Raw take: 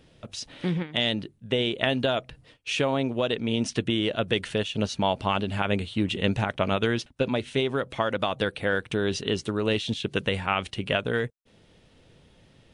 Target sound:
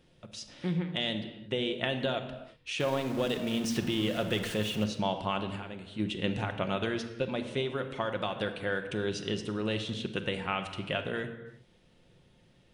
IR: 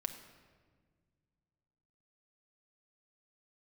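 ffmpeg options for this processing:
-filter_complex "[0:a]asettb=1/sr,asplit=3[link_01][link_02][link_03];[link_01]atrim=end=2.804[link_04];[link_02]atrim=start=2.8:end=4.84,asetpts=PTS-STARTPTS,afade=type=in:duration=0.004:curve=qsin,afade=type=out:start_time=2.036:duration=0.004:curve=qsin,aeval=exprs='val(0)+0.5*0.0316*sgn(val(0))':channel_layout=same[link_05];[link_03]atrim=start=4.836[link_06];[link_04][link_05]acrossfade=duration=0.004:curve1=hsin:curve2=qsin[link_07];[link_07][link_06]acrossfade=duration=0.004:curve1=qsin:curve2=hsin,asplit=3[link_08][link_09][link_10];[link_08]afade=type=out:start_time=5.55:duration=0.02[link_11];[link_09]acompressor=threshold=-32dB:ratio=6,afade=type=in:start_time=5.55:duration=0.02,afade=type=out:start_time=5.98:duration=0.02[link_12];[link_10]afade=type=in:start_time=5.98:duration=0.02[link_13];[link_11][link_12][link_13]amix=inputs=3:normalize=0[link_14];[1:a]atrim=start_sample=2205,afade=type=out:start_time=0.42:duration=0.01,atrim=end_sample=18963[link_15];[link_14][link_15]afir=irnorm=-1:irlink=0,volume=-6dB"

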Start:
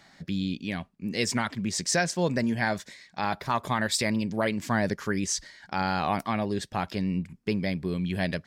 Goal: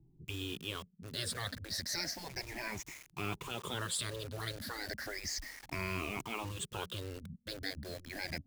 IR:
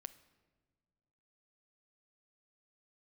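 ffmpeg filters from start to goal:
-filter_complex "[0:a]afftfilt=real='re*pow(10,22/40*sin(2*PI*(0.7*log(max(b,1)*sr/1024/100)/log(2)-(0.33)*(pts-256)/sr)))':imag='im*pow(10,22/40*sin(2*PI*(0.7*log(max(b,1)*sr/1024/100)/log(2)-(0.33)*(pts-256)/sr)))':win_size=1024:overlap=0.75,afftfilt=real='re*lt(hypot(re,im),0.158)':imag='im*lt(hypot(re,im),0.158)':win_size=1024:overlap=0.75,lowshelf=frequency=140:gain=8,acrossover=split=370[link_01][link_02];[link_02]acrusher=bits=6:mix=0:aa=0.000001[link_03];[link_01][link_03]amix=inputs=2:normalize=0,volume=-7.5dB"

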